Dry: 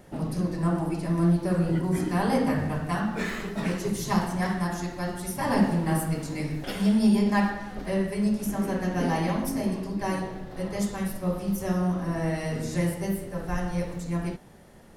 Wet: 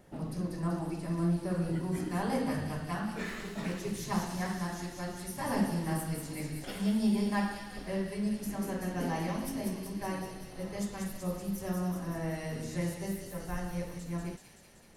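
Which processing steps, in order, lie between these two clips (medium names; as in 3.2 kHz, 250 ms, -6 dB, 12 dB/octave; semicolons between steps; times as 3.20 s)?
feedback echo behind a high-pass 190 ms, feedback 71%, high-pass 3.2 kHz, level -3 dB; trim -7.5 dB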